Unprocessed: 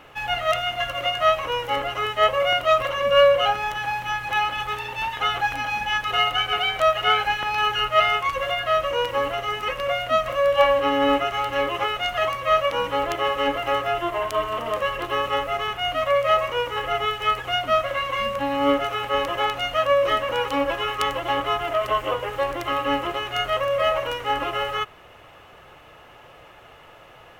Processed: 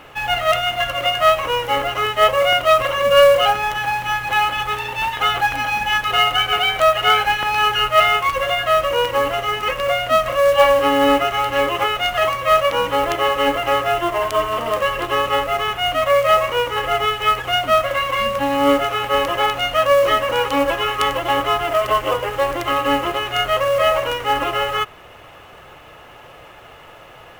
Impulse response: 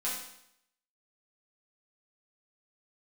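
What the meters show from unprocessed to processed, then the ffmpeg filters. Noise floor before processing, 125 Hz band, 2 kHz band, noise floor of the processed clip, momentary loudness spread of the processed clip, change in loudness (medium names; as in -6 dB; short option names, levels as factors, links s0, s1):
-48 dBFS, +5.5 dB, +5.0 dB, -42 dBFS, 6 LU, +5.0 dB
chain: -af "acrusher=bits=5:mode=log:mix=0:aa=0.000001,aeval=exprs='0.531*(cos(1*acos(clip(val(0)/0.531,-1,1)))-cos(1*PI/2))+0.0211*(cos(5*acos(clip(val(0)/0.531,-1,1)))-cos(5*PI/2))':c=same,volume=1.58"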